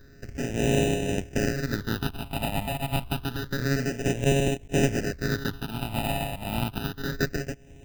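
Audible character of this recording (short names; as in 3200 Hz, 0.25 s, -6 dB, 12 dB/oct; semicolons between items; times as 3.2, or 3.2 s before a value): a buzz of ramps at a fixed pitch in blocks of 64 samples; tremolo triangle 1.7 Hz, depth 55%; aliases and images of a low sample rate 1100 Hz, jitter 0%; phasing stages 6, 0.28 Hz, lowest notch 410–1300 Hz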